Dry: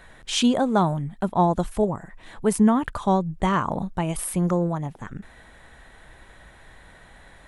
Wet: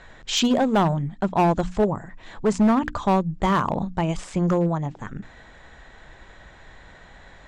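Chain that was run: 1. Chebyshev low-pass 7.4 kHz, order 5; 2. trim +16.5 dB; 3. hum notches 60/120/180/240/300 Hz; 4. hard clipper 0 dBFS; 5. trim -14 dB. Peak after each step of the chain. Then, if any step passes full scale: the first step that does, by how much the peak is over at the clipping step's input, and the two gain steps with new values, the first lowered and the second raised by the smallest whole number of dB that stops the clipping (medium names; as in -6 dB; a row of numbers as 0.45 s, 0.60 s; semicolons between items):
-8.5 dBFS, +8.0 dBFS, +7.5 dBFS, 0.0 dBFS, -14.0 dBFS; step 2, 7.5 dB; step 2 +8.5 dB, step 5 -6 dB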